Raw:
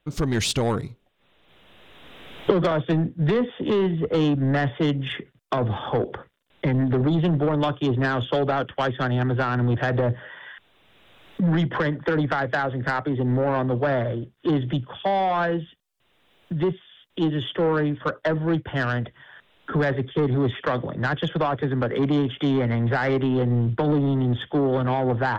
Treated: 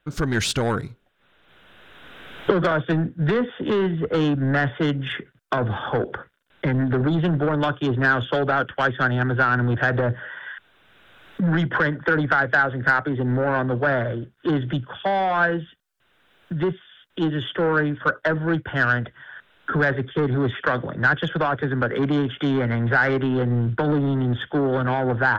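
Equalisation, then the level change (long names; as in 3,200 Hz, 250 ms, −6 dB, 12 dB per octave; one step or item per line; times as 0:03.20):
parametric band 1,500 Hz +11 dB 0.39 octaves
0.0 dB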